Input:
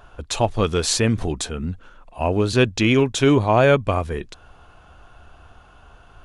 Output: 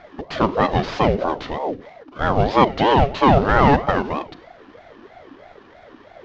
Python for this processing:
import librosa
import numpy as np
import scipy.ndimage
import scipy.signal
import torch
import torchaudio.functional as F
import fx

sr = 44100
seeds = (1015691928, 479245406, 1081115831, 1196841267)

y = fx.cvsd(x, sr, bps=32000)
y = scipy.signal.sosfilt(scipy.signal.butter(2, 3600.0, 'lowpass', fs=sr, output='sos'), y)
y = fx.rev_schroeder(y, sr, rt60_s=0.61, comb_ms=32, drr_db=14.0)
y = fx.ring_lfo(y, sr, carrier_hz=500.0, swing_pct=45, hz=3.1)
y = F.gain(torch.from_numpy(y), 5.0).numpy()